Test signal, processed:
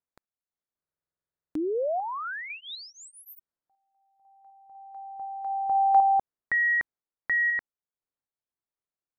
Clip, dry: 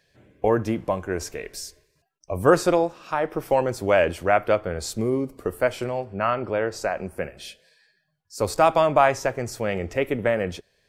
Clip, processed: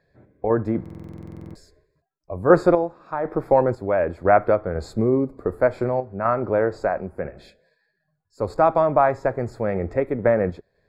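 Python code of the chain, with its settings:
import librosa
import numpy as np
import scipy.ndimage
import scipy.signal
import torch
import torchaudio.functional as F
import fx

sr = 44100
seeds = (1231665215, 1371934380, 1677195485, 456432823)

y = fx.tremolo_random(x, sr, seeds[0], hz=4.0, depth_pct=65)
y = np.convolve(y, np.full(15, 1.0 / 15))[:len(y)]
y = fx.buffer_glitch(y, sr, at_s=(0.81,), block=2048, repeats=15)
y = y * librosa.db_to_amplitude(5.5)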